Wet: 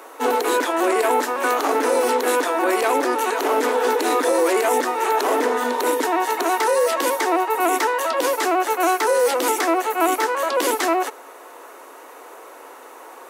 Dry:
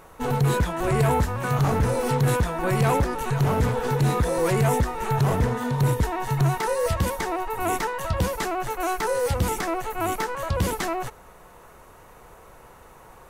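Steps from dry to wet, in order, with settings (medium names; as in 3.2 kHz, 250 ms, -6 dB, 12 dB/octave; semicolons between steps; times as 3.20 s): steep high-pass 260 Hz 96 dB/octave; peak limiter -18.5 dBFS, peak gain reduction 6.5 dB; trim +8.5 dB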